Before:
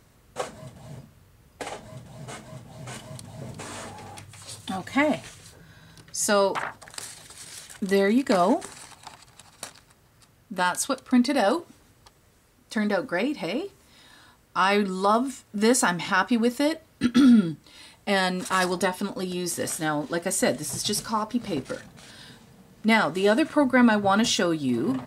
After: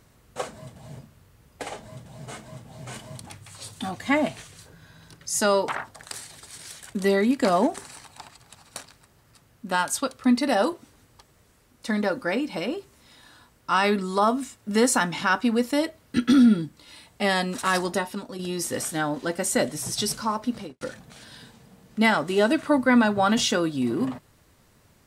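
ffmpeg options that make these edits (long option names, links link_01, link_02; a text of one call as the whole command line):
ffmpeg -i in.wav -filter_complex "[0:a]asplit=4[link_01][link_02][link_03][link_04];[link_01]atrim=end=3.272[link_05];[link_02]atrim=start=4.138:end=19.26,asetpts=PTS-STARTPTS,afade=type=out:start_time=14.492:duration=0.63:silence=0.446684[link_06];[link_03]atrim=start=19.26:end=21.68,asetpts=PTS-STARTPTS,afade=type=in:duration=0.004:curve=hsin:silence=0.446684,afade=type=out:start_time=2.17:duration=0.25:curve=qua[link_07];[link_04]atrim=start=21.68,asetpts=PTS-STARTPTS,afade=type=in:duration=0.004:curve=hsin[link_08];[link_06][link_07][link_08]concat=n=3:v=0:a=1[link_09];[link_05][link_09]acrossfade=duration=0.004:curve1=hsin:curve2=hsin" out.wav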